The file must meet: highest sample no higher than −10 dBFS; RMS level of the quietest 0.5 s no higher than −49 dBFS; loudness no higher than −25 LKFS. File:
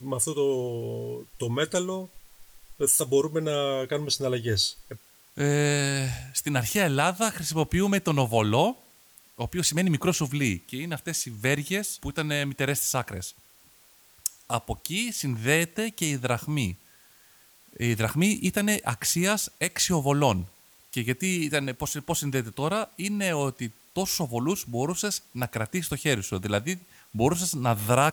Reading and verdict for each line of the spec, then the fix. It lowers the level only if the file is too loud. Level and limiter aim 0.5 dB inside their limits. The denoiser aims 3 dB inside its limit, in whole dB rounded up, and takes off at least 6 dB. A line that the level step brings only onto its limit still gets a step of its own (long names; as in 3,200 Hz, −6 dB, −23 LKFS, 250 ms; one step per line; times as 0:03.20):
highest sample −8.0 dBFS: out of spec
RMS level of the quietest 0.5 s −57 dBFS: in spec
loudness −26.5 LKFS: in spec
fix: brickwall limiter −10.5 dBFS